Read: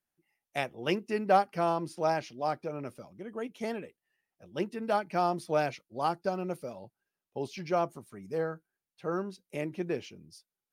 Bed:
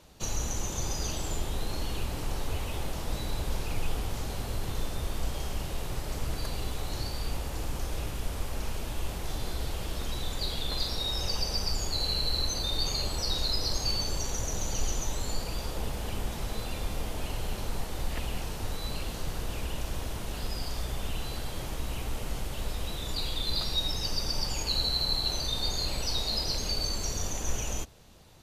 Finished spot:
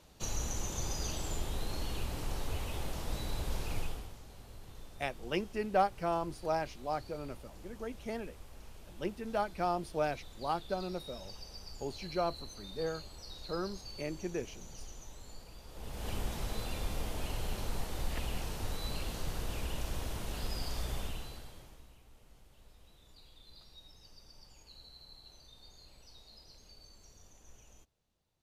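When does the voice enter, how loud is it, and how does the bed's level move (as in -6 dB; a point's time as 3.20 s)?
4.45 s, -4.5 dB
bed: 3.79 s -4.5 dB
4.19 s -18 dB
15.65 s -18 dB
16.09 s -3.5 dB
20.98 s -3.5 dB
22.00 s -26.5 dB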